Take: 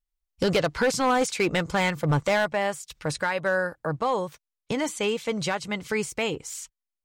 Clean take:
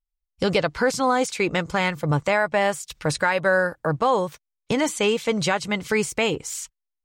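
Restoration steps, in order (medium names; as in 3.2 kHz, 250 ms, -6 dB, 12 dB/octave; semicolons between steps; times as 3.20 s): clip repair -17 dBFS; gain correction +5 dB, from 2.53 s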